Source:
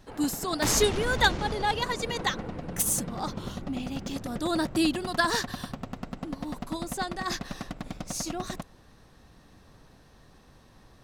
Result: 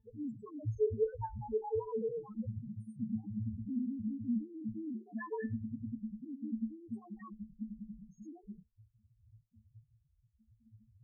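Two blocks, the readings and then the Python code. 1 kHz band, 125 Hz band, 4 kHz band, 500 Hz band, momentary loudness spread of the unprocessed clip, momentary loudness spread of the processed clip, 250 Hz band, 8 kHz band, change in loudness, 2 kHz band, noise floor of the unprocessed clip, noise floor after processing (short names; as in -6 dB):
-18.0 dB, -6.5 dB, under -40 dB, -6.0 dB, 15 LU, 14 LU, -6.5 dB, under -40 dB, -10.5 dB, -26.0 dB, -56 dBFS, -75 dBFS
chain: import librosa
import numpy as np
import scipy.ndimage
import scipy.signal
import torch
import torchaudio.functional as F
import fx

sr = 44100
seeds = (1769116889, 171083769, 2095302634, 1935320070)

p1 = fx.leveller(x, sr, passes=1)
p2 = fx.over_compress(p1, sr, threshold_db=-31.0, ratio=-1.0)
p3 = p1 + (p2 * librosa.db_to_amplitude(2.0))
p4 = fx.spec_topn(p3, sr, count=1)
p5 = fx.octave_resonator(p4, sr, note='A', decay_s=0.2)
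y = p5 * librosa.db_to_amplitude(6.5)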